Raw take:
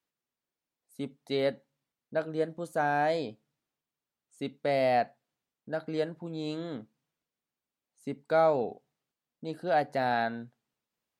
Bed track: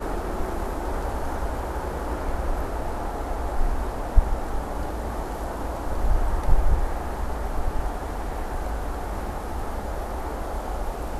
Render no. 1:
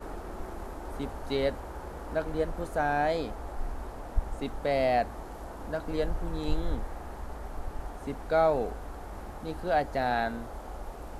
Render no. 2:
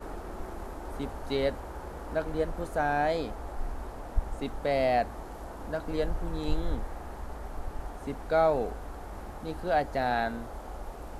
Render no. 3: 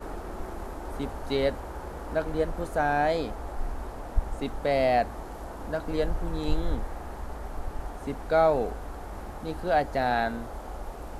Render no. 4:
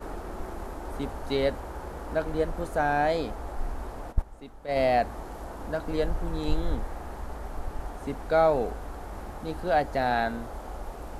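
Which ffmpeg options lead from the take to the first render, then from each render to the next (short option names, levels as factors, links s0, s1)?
-filter_complex "[1:a]volume=0.282[s0];[0:a][s0]amix=inputs=2:normalize=0"
-af anull
-af "volume=1.33"
-filter_complex "[0:a]asplit=3[s0][s1][s2];[s0]afade=t=out:st=4.11:d=0.02[s3];[s1]agate=range=0.224:threshold=0.0631:ratio=16:release=100:detection=peak,afade=t=in:st=4.11:d=0.02,afade=t=out:st=4.75:d=0.02[s4];[s2]afade=t=in:st=4.75:d=0.02[s5];[s3][s4][s5]amix=inputs=3:normalize=0"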